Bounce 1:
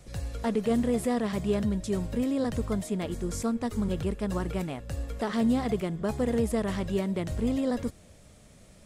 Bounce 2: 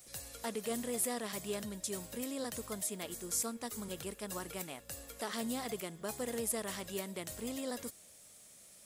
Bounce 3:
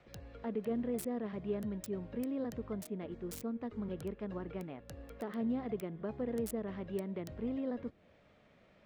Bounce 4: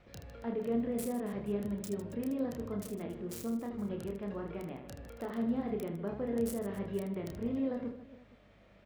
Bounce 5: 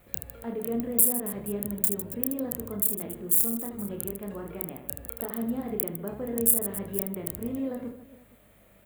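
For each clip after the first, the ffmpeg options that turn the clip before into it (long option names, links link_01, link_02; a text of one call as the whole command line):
ffmpeg -i in.wav -af "aemphasis=mode=production:type=riaa,volume=-7.5dB" out.wav
ffmpeg -i in.wav -filter_complex "[0:a]acrossover=split=490[link_01][link_02];[link_02]acompressor=threshold=-57dB:ratio=2.5[link_03];[link_01][link_03]amix=inputs=2:normalize=0,acrossover=split=2700[link_04][link_05];[link_05]acrusher=bits=6:mix=0:aa=0.000001[link_06];[link_04][link_06]amix=inputs=2:normalize=0,volume=5dB" out.wav
ffmpeg -i in.wav -af "aeval=exprs='val(0)+0.000501*(sin(2*PI*50*n/s)+sin(2*PI*2*50*n/s)/2+sin(2*PI*3*50*n/s)/3+sin(2*PI*4*50*n/s)/4+sin(2*PI*5*50*n/s)/5)':channel_layout=same,aecho=1:1:30|78|154.8|277.7|474.3:0.631|0.398|0.251|0.158|0.1" out.wav
ffmpeg -i in.wav -af "aexciter=amount=7.6:drive=9.8:freq=8100,volume=2dB" out.wav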